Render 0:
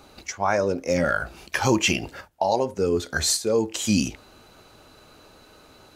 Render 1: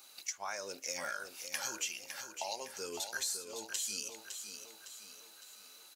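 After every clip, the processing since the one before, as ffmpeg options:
-af "aderivative,acompressor=threshold=-38dB:ratio=10,aecho=1:1:559|1118|1677|2236|2795:0.398|0.183|0.0842|0.0388|0.0178,volume=3dB"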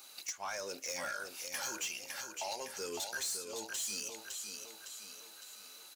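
-af "asoftclip=type=tanh:threshold=-35.5dB,volume=3dB"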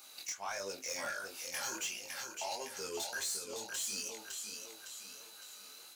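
-af "flanger=delay=20:depth=5.7:speed=1.5,volume=3dB"

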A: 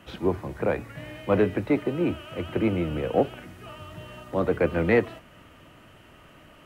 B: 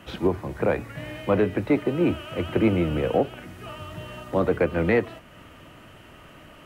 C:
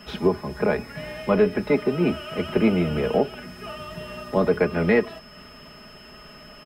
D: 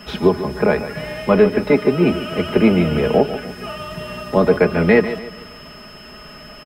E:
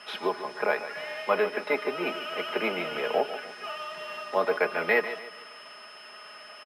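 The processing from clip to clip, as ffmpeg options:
-af "alimiter=limit=-14.5dB:level=0:latency=1:release=445,volume=4dB"
-af "aeval=exprs='val(0)+0.00224*sin(2*PI*5200*n/s)':c=same,aecho=1:1:4.8:0.73"
-af "aecho=1:1:146|292|438|584:0.237|0.0925|0.0361|0.0141,volume=6dB"
-af "acrusher=samples=3:mix=1:aa=0.000001,highpass=720,lowpass=5.6k,volume=-4dB"

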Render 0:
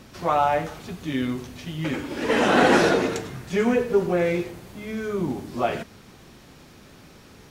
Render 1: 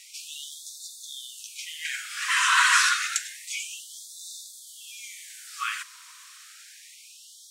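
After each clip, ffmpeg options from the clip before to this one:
-af "equalizer=f=8.2k:w=1.2:g=11.5,afftfilt=real='re*gte(b*sr/1024,940*pow(3500/940,0.5+0.5*sin(2*PI*0.29*pts/sr)))':imag='im*gte(b*sr/1024,940*pow(3500/940,0.5+0.5*sin(2*PI*0.29*pts/sr)))':win_size=1024:overlap=0.75,volume=3dB"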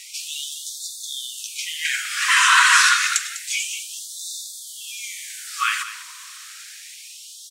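-filter_complex "[0:a]asplit=2[a][b];[b]alimiter=limit=-15.5dB:level=0:latency=1:release=446,volume=2dB[c];[a][c]amix=inputs=2:normalize=0,aecho=1:1:200:0.211,volume=1.5dB"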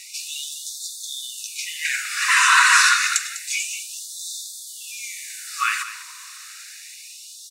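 -af "asuperstop=centerf=3200:order=4:qfactor=7.6"

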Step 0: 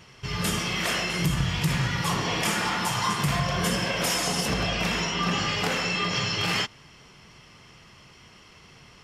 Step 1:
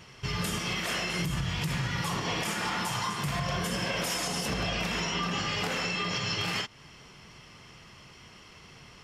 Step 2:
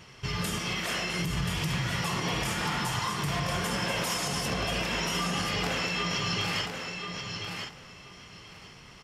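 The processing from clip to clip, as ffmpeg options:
-af "alimiter=limit=-21dB:level=0:latency=1:release=232"
-af "aecho=1:1:1032|2064|3096:0.501|0.0852|0.0145"

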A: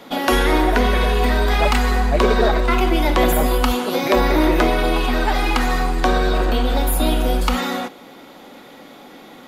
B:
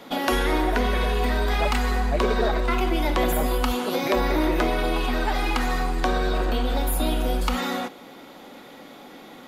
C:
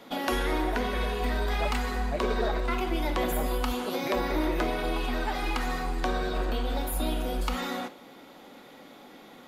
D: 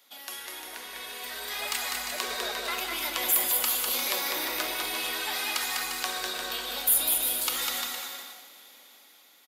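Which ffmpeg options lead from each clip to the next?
-af "acompressor=threshold=-22dB:ratio=1.5,volume=-2.5dB"
-af "flanger=delay=8.6:depth=5.9:regen=-84:speed=0.99:shape=sinusoidal,volume=-1dB"
-af "aderivative,dynaudnorm=f=310:g=9:m=12dB,aecho=1:1:200|350|462.5|546.9|610.2:0.631|0.398|0.251|0.158|0.1"

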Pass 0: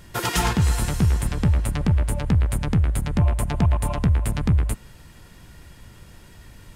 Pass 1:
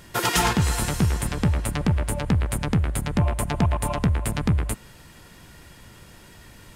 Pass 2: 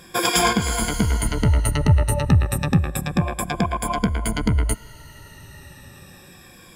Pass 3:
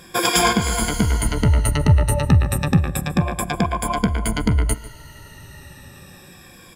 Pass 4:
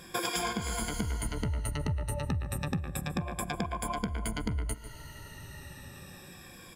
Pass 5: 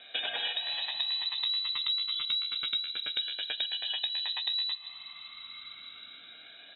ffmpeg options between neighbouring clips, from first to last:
-af "lowshelf=f=120:g=-9,volume=2.5dB"
-af "afftfilt=real='re*pow(10,17/40*sin(2*PI*(1.8*log(max(b,1)*sr/1024/100)/log(2)-(-0.3)*(pts-256)/sr)))':imag='im*pow(10,17/40*sin(2*PI*(1.8*log(max(b,1)*sr/1024/100)/log(2)-(-0.3)*(pts-256)/sr)))':win_size=1024:overlap=0.75"
-filter_complex "[0:a]asplit=2[a][b];[b]adelay=145.8,volume=-17dB,highshelf=f=4k:g=-3.28[c];[a][c]amix=inputs=2:normalize=0,volume=1.5dB"
-af "acompressor=threshold=-26dB:ratio=4,volume=-5dB"
-af "lowpass=f=3.4k:t=q:w=0.5098,lowpass=f=3.4k:t=q:w=0.6013,lowpass=f=3.4k:t=q:w=0.9,lowpass=f=3.4k:t=q:w=2.563,afreqshift=-4000"

